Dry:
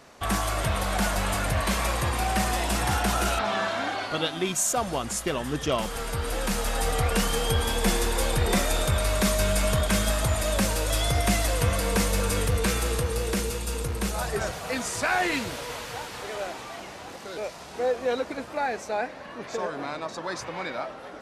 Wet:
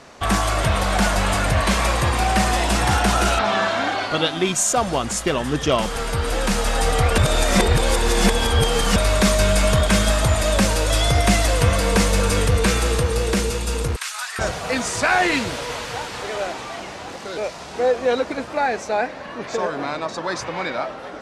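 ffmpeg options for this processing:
-filter_complex "[0:a]asettb=1/sr,asplit=3[a][b][c];[a]atrim=end=13.964[d];[b]atrim=start=13.96:end=14.39,asetpts=PTS-STARTPTS,afade=t=in:d=0.004:c=qsin,afade=t=out:st=0.426:d=0.004:c=qsin,highpass=f=1.2k:w=0.5412,highpass=f=1.2k:w=1.3066[e];[c]atrim=start=14.386[f];[d][e]acrossfade=d=0.004:c1=hsin:c2=qsin[g];[g][f]acrossfade=d=0.004:c1=qsin:c2=hsin,asplit=3[h][i][j];[h]atrim=end=7.182[k];[i]atrim=start=7.178:end=8.962,asetpts=PTS-STARTPTS,areverse[l];[j]atrim=start=8.958[m];[k][l]acrossfade=d=0.004:c1=hsin:c2=hsin[n];[n][m]acrossfade=d=0.004:c1=hsin:c2=hsin,lowpass=8.9k,volume=7dB"

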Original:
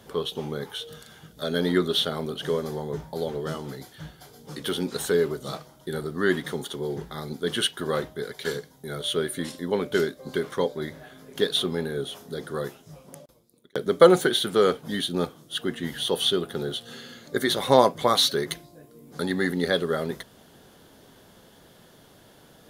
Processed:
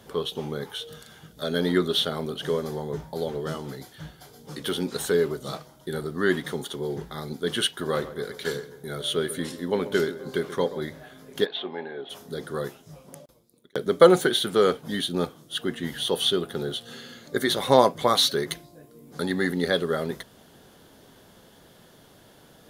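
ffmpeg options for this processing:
-filter_complex "[0:a]asettb=1/sr,asplit=3[a][b][c];[a]atrim=end=7.774[d];[b]atrim=start=7.77:end=10.83,asetpts=PTS-STARTPTS,afade=t=in:d=0.004:c=qsin,afade=t=out:st=3.056:d=0.004:c=qsin,asplit=2[e][f];[f]adelay=132,lowpass=f=2k:p=1,volume=-13.5dB,asplit=2[g][h];[h]adelay=132,lowpass=f=2k:p=1,volume=0.54,asplit=2[i][j];[j]adelay=132,lowpass=f=2k:p=1,volume=0.54,asplit=2[k][l];[l]adelay=132,lowpass=f=2k:p=1,volume=0.54,asplit=2[m][n];[n]adelay=132,lowpass=f=2k:p=1,volume=0.54[o];[e][g][i][k][m][o]amix=inputs=6:normalize=0,atrim=end_sample=134946[p];[c]atrim=start=10.826[q];[d][p]acrossfade=d=0.004:c1=hsin:c2=qsin[r];[r][q]acrossfade=d=0.004:c1=qsin:c2=hsin,asplit=3[s][t][u];[s]afade=t=out:st=11.44:d=0.02[v];[t]highpass=410,equalizer=f=470:t=q:w=4:g=-6,equalizer=f=820:t=q:w=4:g=7,equalizer=f=1.3k:t=q:w=4:g=-9,lowpass=f=2.9k:w=0.5412,lowpass=f=2.9k:w=1.3066,afade=t=in:st=11.44:d=0.02,afade=t=out:st=12.09:d=0.02[w];[u]afade=t=in:st=12.09:d=0.02[x];[v][w][x]amix=inputs=3:normalize=0"

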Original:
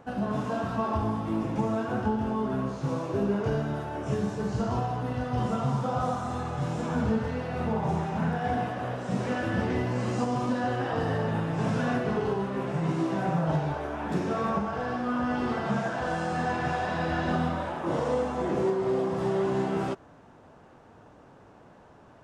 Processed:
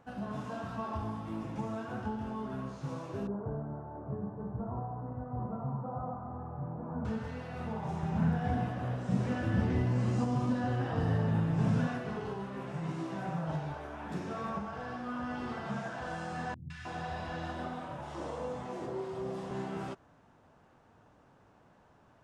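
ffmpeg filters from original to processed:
-filter_complex "[0:a]asettb=1/sr,asplit=3[a][b][c];[a]atrim=end=3.274[d];[b]atrim=start=3.27:end=7.05,asetpts=PTS-STARTPTS,afade=t=in:d=0.004:c=qsin,afade=t=out:st=3.776:d=0.004:c=qsin,lowpass=f=1.1k:w=0.5412,lowpass=f=1.1k:w=1.3066[e];[c]atrim=start=7.046[f];[d][e]acrossfade=d=0.004:c1=hsin:c2=qsin[g];[g][f]acrossfade=d=0.004:c1=qsin:c2=hsin,asettb=1/sr,asplit=3[h][i][j];[h]atrim=end=8.034[k];[i]atrim=start=8.03:end=11.87,asetpts=PTS-STARTPTS,afade=t=in:d=0.004:c=qsin,afade=t=out:st=3.836:d=0.004:c=qsin,lowshelf=f=340:g=11[l];[j]atrim=start=11.866[m];[k][l]acrossfade=d=0.004:c1=hsin:c2=qsin[n];[n][m]acrossfade=d=0.004:c1=qsin:c2=hsin,asettb=1/sr,asplit=3[o][p][q];[o]atrim=end=16.544[r];[p]atrim=start=16.54:end=19.51,asetpts=PTS-STARTPTS,afade=t=in:d=0.004:c=qsin,afade=t=out:st=2.966:d=0.004:c=qsin,acrossover=split=190|1600[s][t][u];[u]adelay=160[v];[t]adelay=310[w];[s][w][v]amix=inputs=3:normalize=0,atrim=end_sample=130977[x];[q]atrim=start=19.506[y];[r][x]acrossfade=d=0.004:c1=hsin:c2=qsin[z];[z][y]acrossfade=d=0.004:c1=qsin:c2=hsin,equalizer=f=410:t=o:w=1.6:g=-4,volume=-7.5dB"

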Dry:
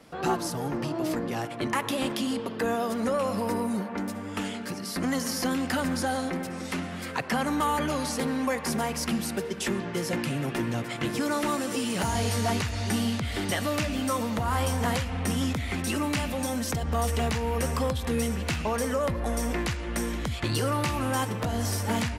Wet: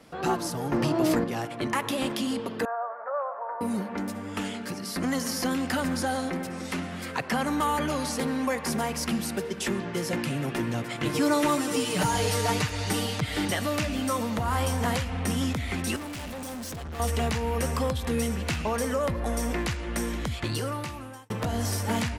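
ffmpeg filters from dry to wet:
-filter_complex "[0:a]asettb=1/sr,asplit=3[a][b][c];[a]atrim=end=2.654[d];[b]atrim=start=2.65:end=3.61,asetpts=PTS-STARTPTS,afade=t=in:d=0.004:c=qsin,afade=t=out:st=0.956:d=0.004:c=qsin,asuperpass=centerf=950:order=8:qfactor=0.94[e];[c]atrim=start=3.606[f];[d][e]acrossfade=d=0.004:c1=hsin:c2=qsin[g];[g][f]acrossfade=d=0.004:c1=qsin:c2=hsin,asettb=1/sr,asplit=3[h][i][j];[h]atrim=end=11.054[k];[i]atrim=start=11.05:end=13.48,asetpts=PTS-STARTPTS,afade=t=in:d=0.004:c=qsin,afade=t=out:st=2.426:d=0.004:c=qsin,aecho=1:1:6.6:0.94,atrim=end_sample=107163[l];[j]atrim=start=13.476[m];[k][l]acrossfade=d=0.004:c1=hsin:c2=qsin[n];[n][m]acrossfade=d=0.004:c1=qsin:c2=hsin,asettb=1/sr,asplit=3[o][p][q];[o]atrim=end=15.964[r];[p]atrim=start=15.96:end=17,asetpts=PTS-STARTPTS,afade=t=in:d=0.004:c=qsin,afade=t=out:st=1.036:d=0.004:c=qsin,volume=35dB,asoftclip=hard,volume=-35dB[s];[q]atrim=start=16.996[t];[r][s]acrossfade=d=0.004:c1=hsin:c2=qsin[u];[u][t]acrossfade=d=0.004:c1=qsin:c2=hsin,asplit=4[v][w][x][y];[v]atrim=end=0.722[z];[w]atrim=start=0.718:end=1.242,asetpts=PTS-STARTPTS,volume=5.5dB[aa];[x]atrim=start=1.238:end=21.3,asetpts=PTS-STARTPTS,afade=t=out:st=19.042:d=1.02[ab];[y]atrim=start=21.3,asetpts=PTS-STARTPTS,afade=t=in:d=0.004:c=hsin[ac];[z][aa]acrossfade=d=0.004:c1=hsin:c2=hsin[ad];[ab][ac]concat=n=2:v=0:a=1[ae];[ad][ae]acrossfade=d=0.004:c1=hsin:c2=hsin"

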